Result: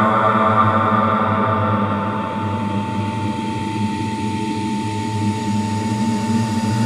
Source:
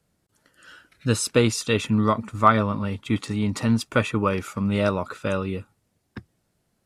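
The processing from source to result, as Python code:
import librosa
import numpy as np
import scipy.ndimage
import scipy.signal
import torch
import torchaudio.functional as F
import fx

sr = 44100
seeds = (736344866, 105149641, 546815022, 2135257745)

y = fx.paulstretch(x, sr, seeds[0], factor=5.8, window_s=1.0, from_s=2.46)
y = y + 10.0 ** (-30.0 / 20.0) * np.sin(2.0 * np.pi * 890.0 * np.arange(len(y)) / sr)
y = F.gain(torch.from_numpy(y), 4.0).numpy()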